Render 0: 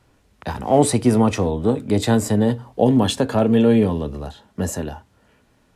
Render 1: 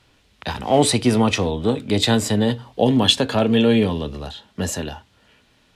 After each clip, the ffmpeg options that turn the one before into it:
-af "equalizer=f=3.4k:t=o:w=1.6:g=12,volume=-1.5dB"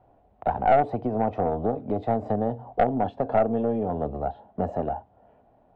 -af "acompressor=threshold=-22dB:ratio=6,lowpass=f=720:t=q:w=7.2,aeval=exprs='(tanh(2.82*val(0)+0.4)-tanh(0.4))/2.82':c=same,volume=-2dB"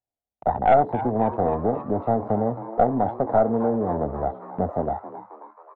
-filter_complex "[0:a]afwtdn=0.0251,agate=range=-23dB:threshold=-43dB:ratio=16:detection=peak,asplit=7[a][b][c][d][e][f][g];[b]adelay=269,afreqshift=110,volume=-14dB[h];[c]adelay=538,afreqshift=220,volume=-19.2dB[i];[d]adelay=807,afreqshift=330,volume=-24.4dB[j];[e]adelay=1076,afreqshift=440,volume=-29.6dB[k];[f]adelay=1345,afreqshift=550,volume=-34.8dB[l];[g]adelay=1614,afreqshift=660,volume=-40dB[m];[a][h][i][j][k][l][m]amix=inputs=7:normalize=0,volume=2.5dB"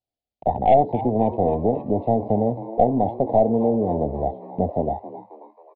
-af "asuperstop=centerf=1400:order=4:qfactor=0.81,aresample=11025,aresample=44100,volume=3dB"

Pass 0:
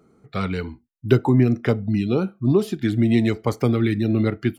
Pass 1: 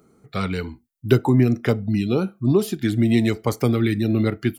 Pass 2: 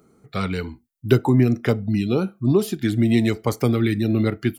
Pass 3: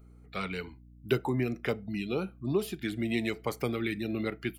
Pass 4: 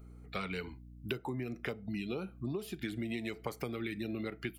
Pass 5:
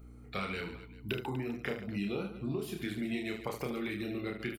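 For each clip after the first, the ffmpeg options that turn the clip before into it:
-af "highshelf=f=6.6k:g=11.5"
-af anull
-af "equalizer=f=100:t=o:w=0.67:g=-12,equalizer=f=250:t=o:w=0.67:g=-5,equalizer=f=2.5k:t=o:w=0.67:g=6,equalizer=f=6.3k:t=o:w=0.67:g=-4,aeval=exprs='val(0)+0.00631*(sin(2*PI*60*n/s)+sin(2*PI*2*60*n/s)/2+sin(2*PI*3*60*n/s)/3+sin(2*PI*4*60*n/s)/4+sin(2*PI*5*60*n/s)/5)':c=same,volume=-8.5dB"
-af "acompressor=threshold=-36dB:ratio=10,volume=2dB"
-af "aecho=1:1:30|75|142.5|243.8|395.6:0.631|0.398|0.251|0.158|0.1"

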